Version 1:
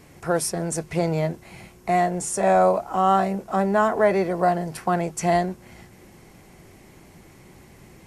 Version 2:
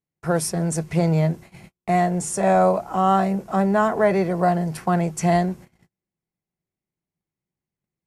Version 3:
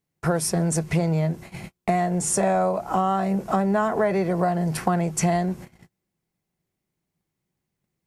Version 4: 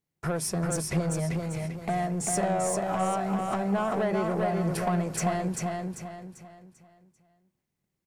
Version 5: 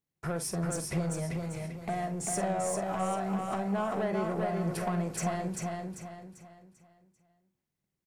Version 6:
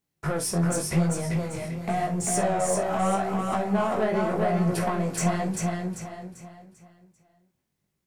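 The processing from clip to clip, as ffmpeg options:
ffmpeg -i in.wav -af "agate=range=-43dB:threshold=-41dB:ratio=16:detection=peak,equalizer=frequency=160:width=2.1:gain=7" out.wav
ffmpeg -i in.wav -af "acompressor=threshold=-27dB:ratio=6,volume=7.5dB" out.wav
ffmpeg -i in.wav -filter_complex "[0:a]asoftclip=type=tanh:threshold=-17dB,asplit=2[link_01][link_02];[link_02]aecho=0:1:393|786|1179|1572|1965:0.668|0.247|0.0915|0.0339|0.0125[link_03];[link_01][link_03]amix=inputs=2:normalize=0,volume=-4.5dB" out.wav
ffmpeg -i in.wav -filter_complex "[0:a]asplit=2[link_01][link_02];[link_02]adelay=47,volume=-11dB[link_03];[link_01][link_03]amix=inputs=2:normalize=0,volume=-4.5dB" out.wav
ffmpeg -i in.wav -filter_complex "[0:a]asplit=2[link_01][link_02];[link_02]aeval=exprs='clip(val(0),-1,0.015)':channel_layout=same,volume=-9dB[link_03];[link_01][link_03]amix=inputs=2:normalize=0,flanger=delay=16.5:depth=6.7:speed=0.86,volume=7.5dB" out.wav

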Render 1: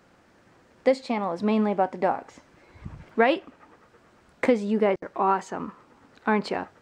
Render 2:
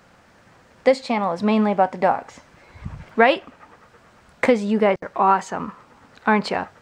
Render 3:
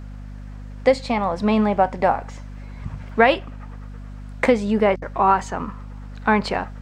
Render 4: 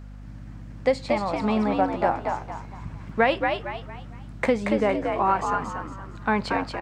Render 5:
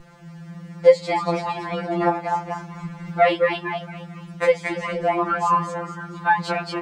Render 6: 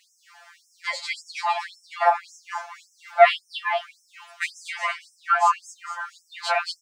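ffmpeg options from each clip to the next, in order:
ffmpeg -i in.wav -af "equalizer=frequency=330:width=1.7:gain=-7.5,volume=7dB" out.wav
ffmpeg -i in.wav -af "aeval=exprs='val(0)+0.02*(sin(2*PI*50*n/s)+sin(2*PI*2*50*n/s)/2+sin(2*PI*3*50*n/s)/3+sin(2*PI*4*50*n/s)/4+sin(2*PI*5*50*n/s)/5)':channel_layout=same" out.wav
ffmpeg -i in.wav -filter_complex "[0:a]asplit=5[link_01][link_02][link_03][link_04][link_05];[link_02]adelay=230,afreqshift=65,volume=-4.5dB[link_06];[link_03]adelay=460,afreqshift=130,volume=-13.6dB[link_07];[link_04]adelay=690,afreqshift=195,volume=-22.7dB[link_08];[link_05]adelay=920,afreqshift=260,volume=-31.9dB[link_09];[link_01][link_06][link_07][link_08][link_09]amix=inputs=5:normalize=0,volume=-5.5dB" out.wav
ffmpeg -i in.wav -filter_complex "[0:a]asplit=2[link_01][link_02];[link_02]acompressor=threshold=-29dB:ratio=6,volume=-1dB[link_03];[link_01][link_03]amix=inputs=2:normalize=0,afftfilt=real='re*2.83*eq(mod(b,8),0)':imag='im*2.83*eq(mod(b,8),0)':win_size=2048:overlap=0.75,volume=3dB" out.wav
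ffmpeg -i in.wav -af "afftfilt=real='re*gte(b*sr/1024,530*pow(5300/530,0.5+0.5*sin(2*PI*1.8*pts/sr)))':imag='im*gte(b*sr/1024,530*pow(5300/530,0.5+0.5*sin(2*PI*1.8*pts/sr)))':win_size=1024:overlap=0.75,volume=4dB" out.wav

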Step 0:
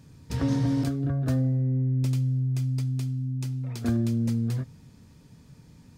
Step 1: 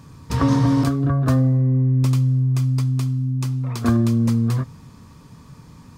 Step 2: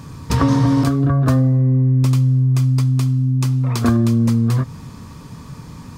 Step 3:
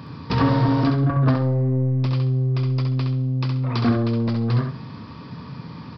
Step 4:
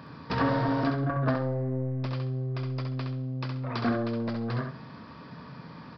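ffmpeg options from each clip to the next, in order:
ffmpeg -i in.wav -af "equalizer=frequency=1100:width=3.3:gain=14,volume=7.5dB" out.wav
ffmpeg -i in.wav -af "acompressor=threshold=-25dB:ratio=2,volume=8.5dB" out.wav
ffmpeg -i in.wav -af "highpass=120,aresample=11025,asoftclip=type=tanh:threshold=-13dB,aresample=44100,aecho=1:1:67|134|201:0.531|0.138|0.0359" out.wav
ffmpeg -i in.wav -af "equalizer=frequency=100:width_type=o:width=0.67:gain=-7,equalizer=frequency=630:width_type=o:width=0.67:gain=7,equalizer=frequency=1600:width_type=o:width=0.67:gain=7,volume=-8dB" out.wav

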